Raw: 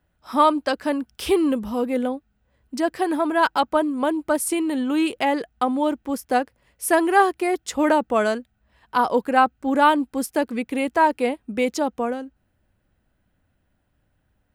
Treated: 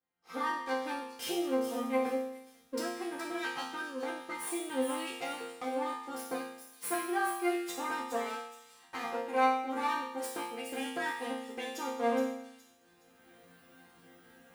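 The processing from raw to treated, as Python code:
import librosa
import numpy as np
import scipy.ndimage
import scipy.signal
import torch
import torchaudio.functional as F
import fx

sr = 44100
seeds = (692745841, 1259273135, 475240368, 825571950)

y = fx.lower_of_two(x, sr, delay_ms=2.5)
y = fx.recorder_agc(y, sr, target_db=-11.0, rise_db_per_s=20.0, max_gain_db=30)
y = scipy.signal.sosfilt(scipy.signal.butter(2, 150.0, 'highpass', fs=sr, output='sos'), y)
y = fx.resonator_bank(y, sr, root=53, chord='sus4', decay_s=0.83)
y = fx.echo_wet_highpass(y, sr, ms=418, feedback_pct=34, hz=5200.0, wet_db=-6.0)
y = F.gain(torch.from_numpy(y), 7.5).numpy()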